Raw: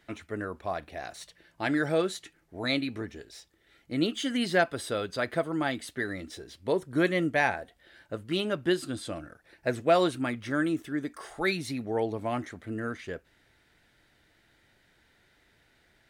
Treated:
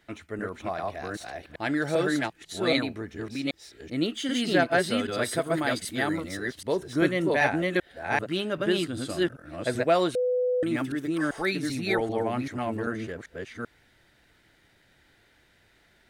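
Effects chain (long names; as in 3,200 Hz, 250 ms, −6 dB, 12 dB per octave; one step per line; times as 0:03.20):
delay that plays each chunk backwards 390 ms, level 0 dB
0:05.22–0:06.37: high-shelf EQ 6,100 Hz +8.5 dB
0:10.15–0:10.63: beep over 499 Hz −22 dBFS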